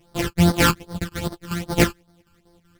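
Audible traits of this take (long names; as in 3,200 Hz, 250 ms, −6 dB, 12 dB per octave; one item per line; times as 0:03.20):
a buzz of ramps at a fixed pitch in blocks of 256 samples
phaser sweep stages 12, 2.5 Hz, lowest notch 620–2,600 Hz
chopped level 5.3 Hz, depth 60%, duty 70%
a shimmering, thickened sound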